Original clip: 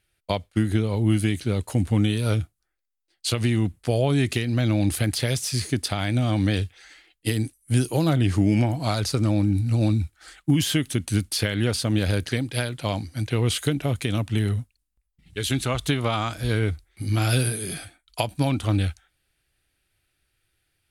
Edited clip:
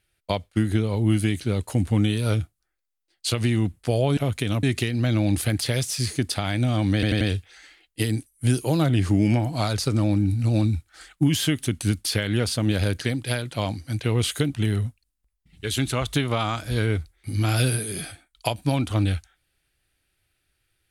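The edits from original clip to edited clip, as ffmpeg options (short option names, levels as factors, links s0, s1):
-filter_complex "[0:a]asplit=7[s0][s1][s2][s3][s4][s5][s6];[s0]atrim=end=4.172[s7];[s1]atrim=start=13.798:end=14.262[s8];[s2]atrim=start=4.168:end=6.572[s9];[s3]atrim=start=6.478:end=6.572[s10];[s4]atrim=start=6.478:end=6.572[s11];[s5]atrim=start=6.478:end=13.802[s12];[s6]atrim=start=14.258[s13];[s7][s8]acrossfade=d=0.004:c1=hsin:c2=hsin[s14];[s14][s9]acrossfade=d=0.004:c1=hsin:c2=hsin[s15];[s15][s10]acrossfade=d=0.004:c1=hsin:c2=hsin[s16];[s16][s11]acrossfade=d=0.004:c1=hsin:c2=hsin[s17];[s17][s12]acrossfade=d=0.004:c1=hsin:c2=hsin[s18];[s18][s13]acrossfade=d=0.004:c1=hsin:c2=hsin"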